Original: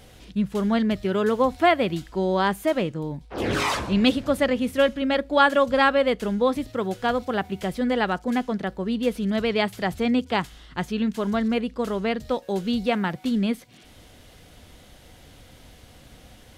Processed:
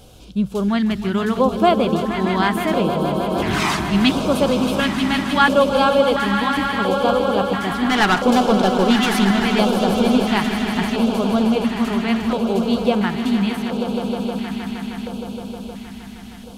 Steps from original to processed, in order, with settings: 7.89–9.31 s: overdrive pedal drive 23 dB, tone 5.9 kHz, clips at -10.5 dBFS; echo with a slow build-up 156 ms, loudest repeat 5, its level -11 dB; LFO notch square 0.73 Hz 520–1900 Hz; trim +4 dB

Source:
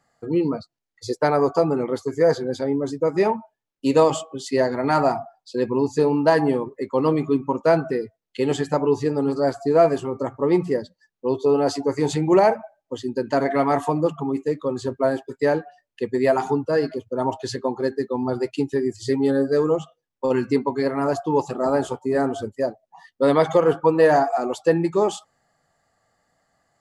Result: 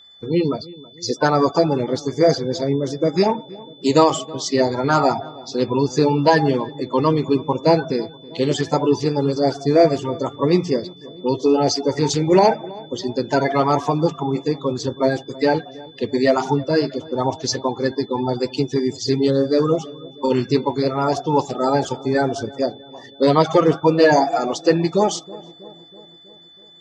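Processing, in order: coarse spectral quantiser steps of 30 dB; resonant low-pass 5.7 kHz, resonance Q 3.6; on a send: filtered feedback delay 323 ms, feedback 62%, low-pass 1.3 kHz, level -20 dB; on the sum: whistle 3.5 kHz -48 dBFS; trim +3 dB

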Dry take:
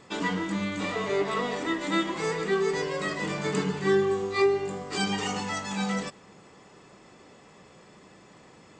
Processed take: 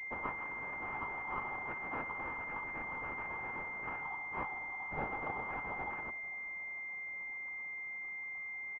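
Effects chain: in parallel at +0.5 dB: compression, threshold -35 dBFS, peak gain reduction 16 dB; on the sum: noise-vocoded speech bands 12; brick-wall FIR high-pass 720 Hz; distance through air 50 m; on a send: frequency-shifting echo 447 ms, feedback 52%, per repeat -72 Hz, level -21 dB; on the sum: class-D stage that switches slowly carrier 2.1 kHz; trim -4 dB

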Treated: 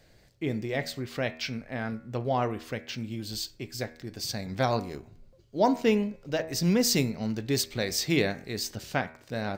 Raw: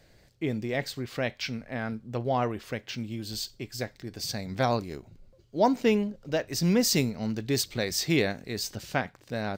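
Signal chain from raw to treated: de-hum 80.02 Hz, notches 33

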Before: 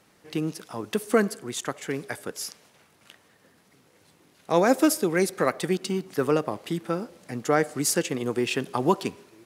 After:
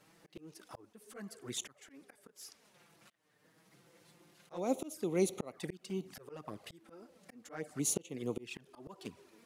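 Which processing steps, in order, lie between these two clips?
slow attack 644 ms; touch-sensitive flanger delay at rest 7.3 ms, full sweep at -33 dBFS; trim -1.5 dB

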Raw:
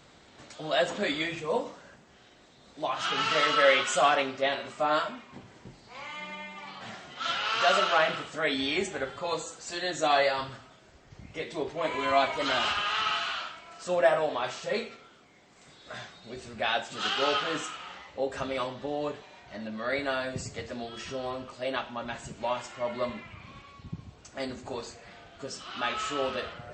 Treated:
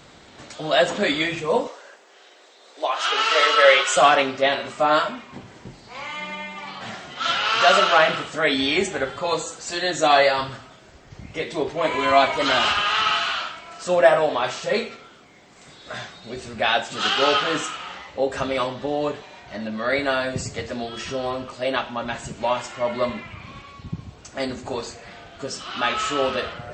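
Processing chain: 1.67–3.97 s: Chebyshev high-pass 410 Hz, order 3; trim +8 dB

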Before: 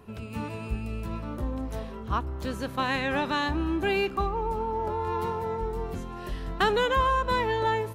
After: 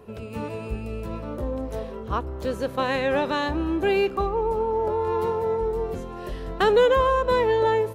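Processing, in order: peaking EQ 500 Hz +10 dB 0.8 oct

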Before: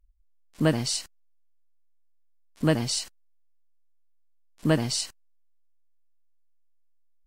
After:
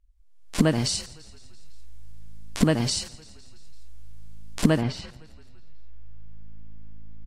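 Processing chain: recorder AGC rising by 42 dB/s; low-pass 11 kHz 12 dB/octave, from 4.80 s 2.5 kHz; frequency-shifting echo 169 ms, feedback 63%, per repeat -54 Hz, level -21 dB

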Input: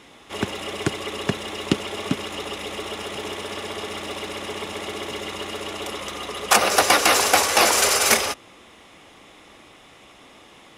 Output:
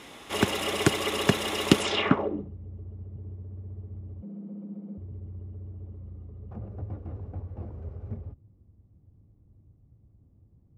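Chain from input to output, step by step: low-pass sweep 14 kHz -> 100 Hz, 1.76–2.52 s; 4.22–4.98 s: frequency shift +110 Hz; trim +1.5 dB

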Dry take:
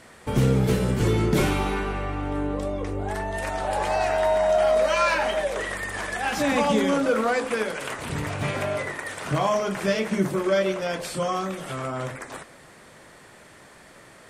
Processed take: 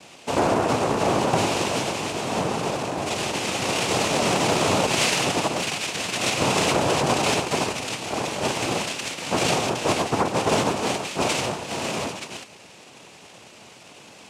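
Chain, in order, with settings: in parallel at -7 dB: decimation with a swept rate 25× 0.26 Hz; on the sum: noise-vocoded speech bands 2; peaking EQ 2.6 kHz +9 dB 0.6 oct; saturation -5.5 dBFS, distortion -27 dB; compression 2.5:1, threshold -18 dBFS, peak gain reduction 3.5 dB

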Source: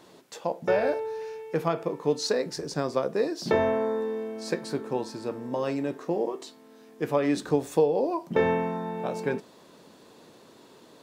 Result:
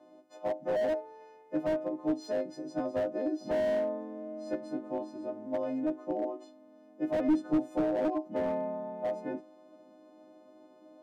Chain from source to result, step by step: partials quantised in pitch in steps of 3 st; two resonant band-passes 430 Hz, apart 0.97 oct; slew-rate limiter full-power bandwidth 16 Hz; trim +4.5 dB

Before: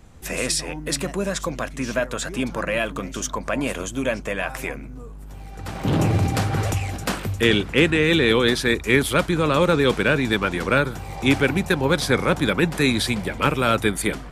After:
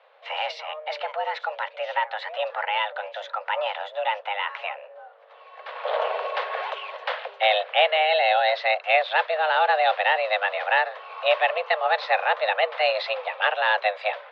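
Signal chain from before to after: mistuned SSB +310 Hz 220–3500 Hz; 8.05–8.56 s: comb of notches 1.2 kHz; trim -1.5 dB

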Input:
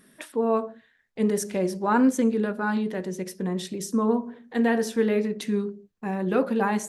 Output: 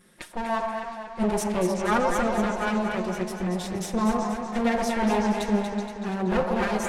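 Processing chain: comb filter that takes the minimum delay 5.6 ms; low-pass 11 kHz 12 dB/octave; vibrato 0.85 Hz 5 cents; on a send: repeats whose band climbs or falls 126 ms, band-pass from 760 Hz, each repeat 1.4 oct, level -1 dB; on the sum: modulated delay 237 ms, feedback 56%, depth 50 cents, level -7 dB; trim +1 dB

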